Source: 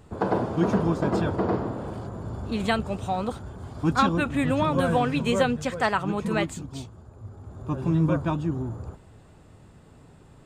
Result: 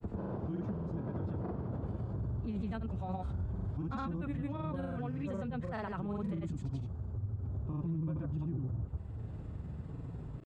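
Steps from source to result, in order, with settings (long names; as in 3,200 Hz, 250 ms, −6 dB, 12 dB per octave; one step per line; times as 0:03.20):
high-pass filter 56 Hz
RIAA equalisation playback
downward compressor 2.5 to 1, threshold −36 dBFS, peak gain reduction 17 dB
brickwall limiter −29 dBFS, peak gain reduction 8.5 dB
granular cloud, pitch spread up and down by 0 semitones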